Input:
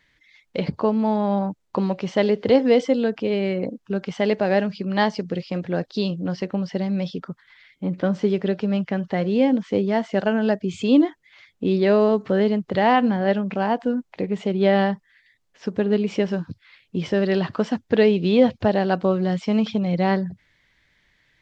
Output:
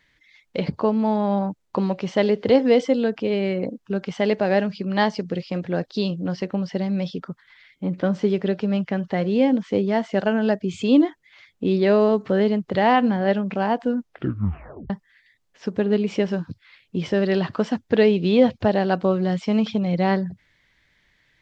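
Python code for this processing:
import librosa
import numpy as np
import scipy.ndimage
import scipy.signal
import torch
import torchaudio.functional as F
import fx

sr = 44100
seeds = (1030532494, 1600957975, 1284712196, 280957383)

y = fx.edit(x, sr, fx.tape_stop(start_s=13.97, length_s=0.93), tone=tone)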